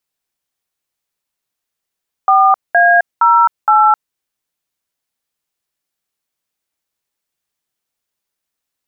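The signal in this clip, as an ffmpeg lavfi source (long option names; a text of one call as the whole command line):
ffmpeg -f lavfi -i "aevalsrc='0.355*clip(min(mod(t,0.466),0.262-mod(t,0.466))/0.002,0,1)*(eq(floor(t/0.466),0)*(sin(2*PI*770*mod(t,0.466))+sin(2*PI*1209*mod(t,0.466)))+eq(floor(t/0.466),1)*(sin(2*PI*697*mod(t,0.466))+sin(2*PI*1633*mod(t,0.466)))+eq(floor(t/0.466),2)*(sin(2*PI*941*mod(t,0.466))+sin(2*PI*1336*mod(t,0.466)))+eq(floor(t/0.466),3)*(sin(2*PI*852*mod(t,0.466))+sin(2*PI*1336*mod(t,0.466))))':duration=1.864:sample_rate=44100" out.wav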